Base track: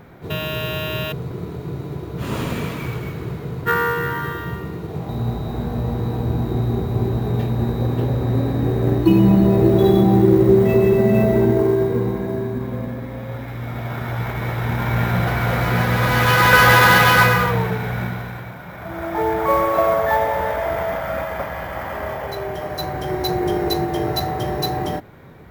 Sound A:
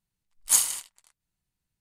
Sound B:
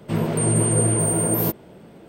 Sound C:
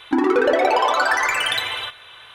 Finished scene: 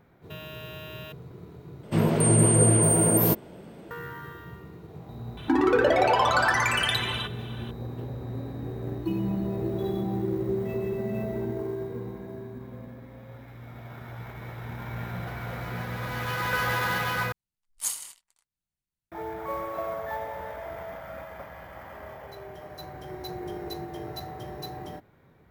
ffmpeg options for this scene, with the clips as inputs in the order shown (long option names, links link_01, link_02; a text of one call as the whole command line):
ffmpeg -i bed.wav -i cue0.wav -i cue1.wav -i cue2.wav -filter_complex "[0:a]volume=-15.5dB[link_01];[3:a]bandreject=frequency=2100:width=19[link_02];[link_01]asplit=3[link_03][link_04][link_05];[link_03]atrim=end=1.834[link_06];[2:a]atrim=end=2.08[link_07];[link_04]atrim=start=3.906:end=17.324[link_08];[1:a]atrim=end=1.8,asetpts=PTS-STARTPTS,volume=-9.5dB[link_09];[link_05]atrim=start=19.116[link_10];[link_02]atrim=end=2.34,asetpts=PTS-STARTPTS,volume=-4dB,afade=type=in:duration=0.004:curve=hsin,afade=type=out:start_time=2.336:duration=0.004:curve=hsin,adelay=236817S[link_11];[link_06][link_07]acrossfade=duration=0.004:curve1=hsin:curve2=hsin[link_12];[link_12][link_08]acrossfade=duration=0.004:curve1=hsin:curve2=hsin[link_13];[link_13][link_09]acrossfade=duration=0.004:curve1=hsin:curve2=hsin[link_14];[link_14][link_10]acrossfade=duration=0.004:curve1=hsin:curve2=hsin[link_15];[link_15][link_11]amix=inputs=2:normalize=0" out.wav